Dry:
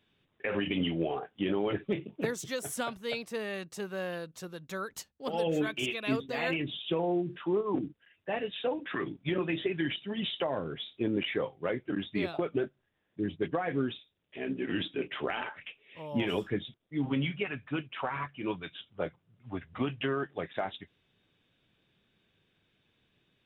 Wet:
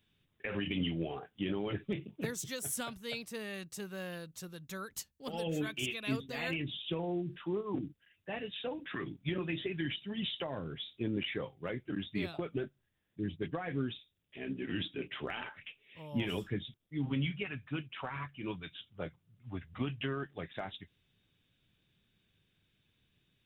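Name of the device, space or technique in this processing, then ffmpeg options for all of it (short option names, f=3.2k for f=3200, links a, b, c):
smiley-face EQ: -af "lowshelf=f=180:g=6.5,equalizer=f=600:t=o:w=2.7:g=-6,highshelf=f=7k:g=8,volume=-3dB"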